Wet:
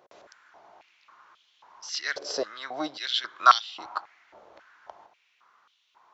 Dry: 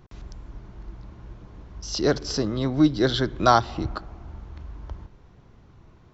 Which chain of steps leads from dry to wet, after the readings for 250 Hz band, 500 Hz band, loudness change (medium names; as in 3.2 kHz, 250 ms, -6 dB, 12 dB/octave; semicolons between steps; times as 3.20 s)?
-19.0 dB, -11.5 dB, -3.5 dB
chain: step-sequenced high-pass 3.7 Hz 570–3200 Hz; trim -3.5 dB